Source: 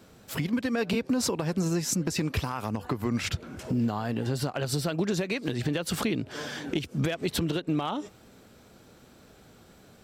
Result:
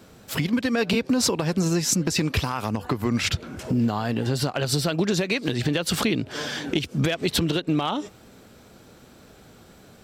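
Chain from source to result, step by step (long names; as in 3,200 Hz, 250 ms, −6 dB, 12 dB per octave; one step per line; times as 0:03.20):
dynamic equaliser 3,900 Hz, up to +4 dB, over −45 dBFS, Q 0.78
level +4.5 dB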